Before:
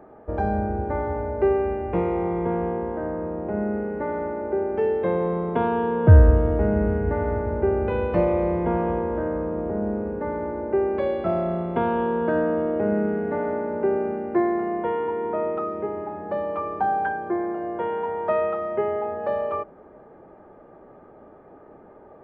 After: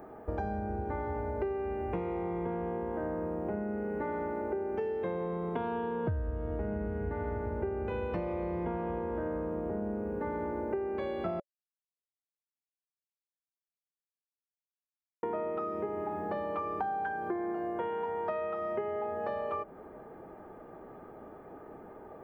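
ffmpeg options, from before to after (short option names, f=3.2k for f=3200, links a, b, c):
-filter_complex "[0:a]asplit=3[a][b][c];[a]atrim=end=11.4,asetpts=PTS-STARTPTS,afade=t=out:st=11.396:d=0.004:c=hsin[d];[b]atrim=start=11.4:end=15.23,asetpts=PTS-STARTPTS,volume=0[e];[c]atrim=start=15.23,asetpts=PTS-STARTPTS,afade=t=in:d=0.004:c=hsin[f];[d][e][f]concat=n=3:v=0:a=1,aemphasis=mode=production:type=50fm,bandreject=f=570:w=12,acompressor=threshold=-31dB:ratio=10"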